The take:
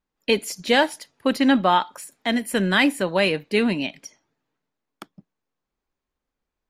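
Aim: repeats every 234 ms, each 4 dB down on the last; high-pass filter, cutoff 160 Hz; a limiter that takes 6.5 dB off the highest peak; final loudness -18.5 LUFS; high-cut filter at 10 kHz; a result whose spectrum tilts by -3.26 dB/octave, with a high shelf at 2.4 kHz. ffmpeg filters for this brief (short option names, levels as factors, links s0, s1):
-af "highpass=160,lowpass=10000,highshelf=f=2400:g=-4,alimiter=limit=0.266:level=0:latency=1,aecho=1:1:234|468|702|936|1170|1404|1638|1872|2106:0.631|0.398|0.25|0.158|0.0994|0.0626|0.0394|0.0249|0.0157,volume=1.68"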